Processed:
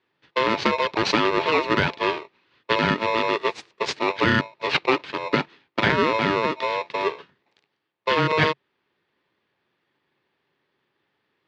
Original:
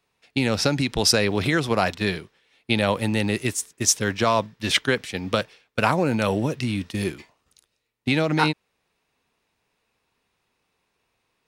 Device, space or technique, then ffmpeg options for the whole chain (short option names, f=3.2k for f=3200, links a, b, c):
ring modulator pedal into a guitar cabinet: -af "aeval=exprs='val(0)*sgn(sin(2*PI*780*n/s))':c=same,highpass=110,equalizer=f=140:t=q:w=4:g=4,equalizer=f=400:t=q:w=4:g=6,equalizer=f=660:t=q:w=4:g=-6,equalizer=f=1.3k:t=q:w=4:g=-4,equalizer=f=3.1k:t=q:w=4:g=-4,lowpass=f=3.7k:w=0.5412,lowpass=f=3.7k:w=1.3066,volume=2dB"